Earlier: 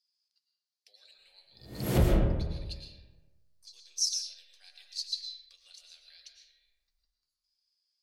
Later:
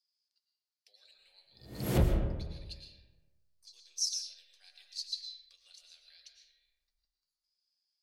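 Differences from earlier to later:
speech -3.5 dB; background: send -7.5 dB

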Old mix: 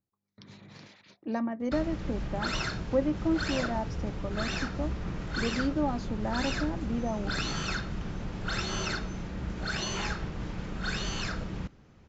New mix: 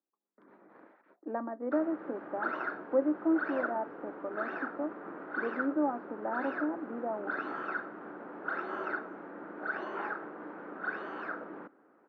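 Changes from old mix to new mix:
background: remove LPF 1800 Hz 6 dB/oct; master: add elliptic band-pass 290–1500 Hz, stop band 80 dB

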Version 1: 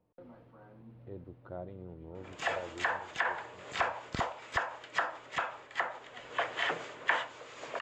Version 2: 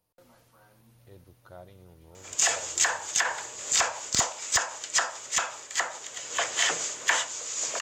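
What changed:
speech: add bell 290 Hz -10 dB 2.5 oct; master: remove air absorption 490 m

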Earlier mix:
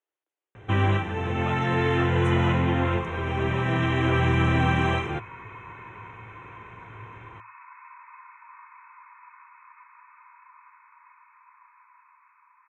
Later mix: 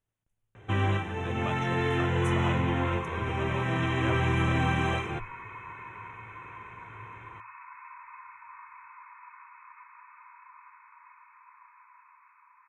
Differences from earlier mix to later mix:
speech: remove steep high-pass 300 Hz 96 dB/oct; first sound -4.5 dB; master: remove air absorption 62 m

